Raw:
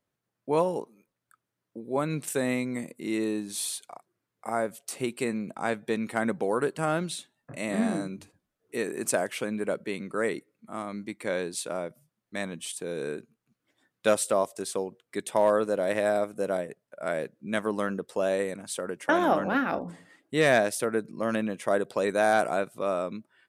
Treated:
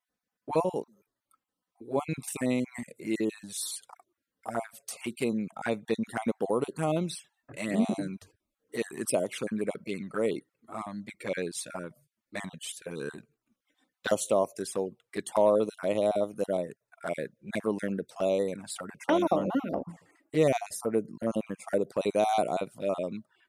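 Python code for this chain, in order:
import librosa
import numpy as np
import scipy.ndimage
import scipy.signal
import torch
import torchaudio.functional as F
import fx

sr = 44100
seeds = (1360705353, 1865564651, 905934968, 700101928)

y = fx.spec_dropout(x, sr, seeds[0], share_pct=24)
y = fx.peak_eq(y, sr, hz=3500.0, db=-10.0, octaves=0.73, at=(19.47, 22.01))
y = fx.env_flanger(y, sr, rest_ms=4.0, full_db=-25.5)
y = F.gain(torch.from_numpy(y), 1.5).numpy()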